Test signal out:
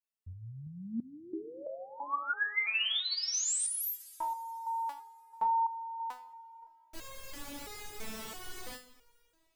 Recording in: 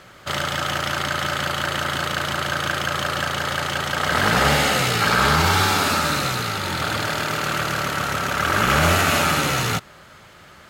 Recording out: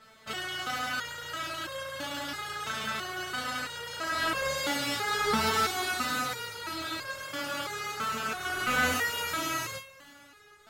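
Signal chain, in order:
coupled-rooms reverb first 0.29 s, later 3 s, from −17 dB, DRR 9.5 dB
step-sequenced resonator 3 Hz 220–540 Hz
level +4 dB

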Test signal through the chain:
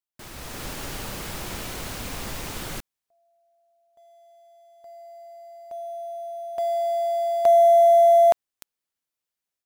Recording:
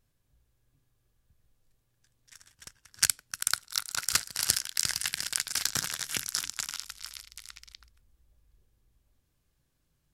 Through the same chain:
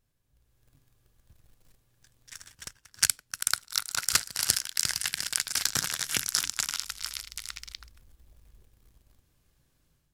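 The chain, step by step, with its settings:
automatic gain control gain up to 8.5 dB
in parallel at −11.5 dB: log-companded quantiser 4 bits
on the sum: level −2.5 dB

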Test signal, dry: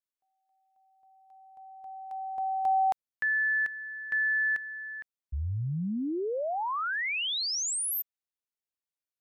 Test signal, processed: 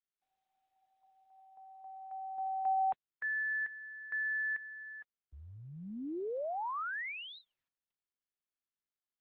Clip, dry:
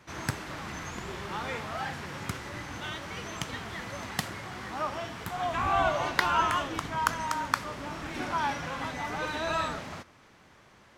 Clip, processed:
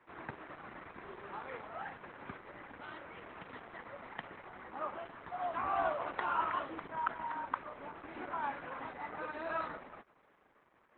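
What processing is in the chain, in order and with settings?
three-way crossover with the lows and the highs turned down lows −14 dB, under 250 Hz, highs −23 dB, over 2,400 Hz
level −5.5 dB
Opus 8 kbit/s 48,000 Hz

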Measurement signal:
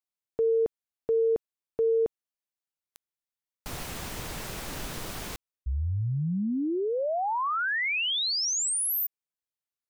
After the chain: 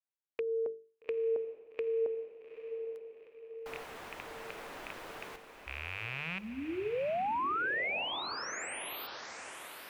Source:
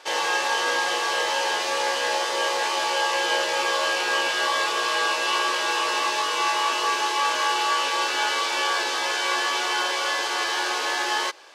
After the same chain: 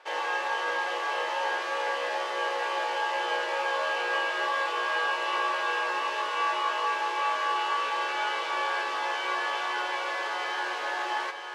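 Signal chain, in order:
loose part that buzzes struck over −34 dBFS, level −19 dBFS
three-way crossover with the lows and the highs turned down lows −16 dB, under 300 Hz, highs −14 dB, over 2,800 Hz
mains-hum notches 50/100/150/200/250/300/350/400/450 Hz
feedback delay with all-pass diffusion 850 ms, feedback 52%, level −8.5 dB
level −4.5 dB

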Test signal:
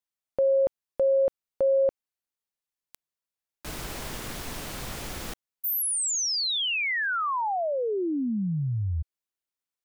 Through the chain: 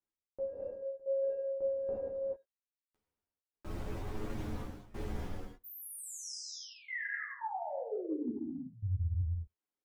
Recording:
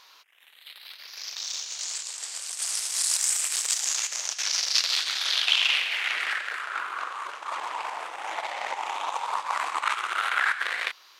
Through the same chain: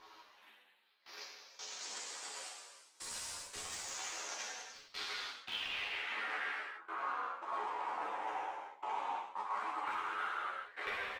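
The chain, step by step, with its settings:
in parallel at −10 dB: wrap-around overflow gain 11 dB
on the sum: gate pattern "xxx...x..xx" 85 BPM −24 dB
reverb reduction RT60 0.64 s
tilt shelving filter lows +7.5 dB, about 1,200 Hz
far-end echo of a speakerphone 90 ms, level −28 dB
reverb whose tail is shaped and stops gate 470 ms falling, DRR −3.5 dB
reversed playback
downward compressor 5 to 1, threshold −31 dBFS
reversed playback
multi-voice chorus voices 4, 0.19 Hz, delay 12 ms, depth 2.7 ms
high-shelf EQ 4,000 Hz −8 dB
notch filter 650 Hz, Q 12
level −2 dB

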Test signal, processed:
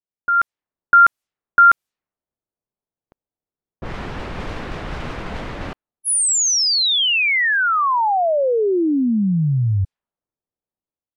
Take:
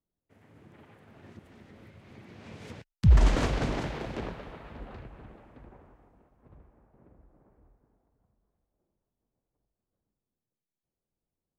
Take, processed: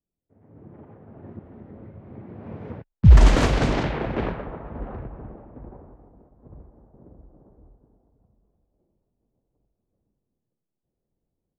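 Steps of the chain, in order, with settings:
automatic gain control gain up to 10 dB
low-pass that shuts in the quiet parts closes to 640 Hz, open at −15 dBFS

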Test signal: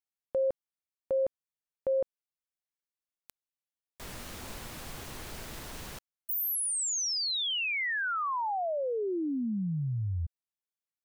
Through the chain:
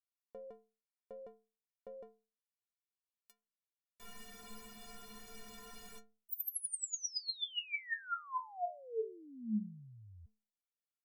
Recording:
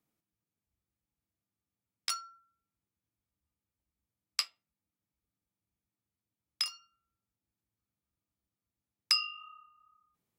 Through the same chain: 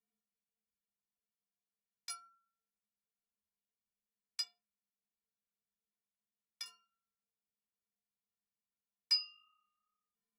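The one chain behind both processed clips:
stiff-string resonator 210 Hz, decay 0.38 s, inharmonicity 0.03
level +3.5 dB

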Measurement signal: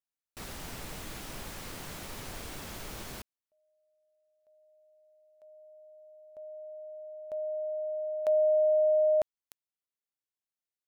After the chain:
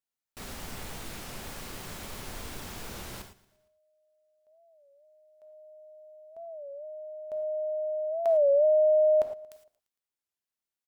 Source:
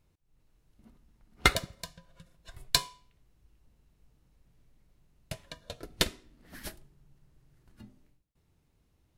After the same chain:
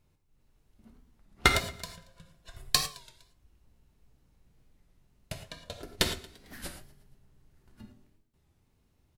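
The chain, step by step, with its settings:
on a send: repeating echo 115 ms, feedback 50%, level −20 dB
on the sum: reverb whose tail is shaped and stops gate 130 ms flat, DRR 5.5 dB
wow of a warped record 33 1/3 rpm, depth 160 cents

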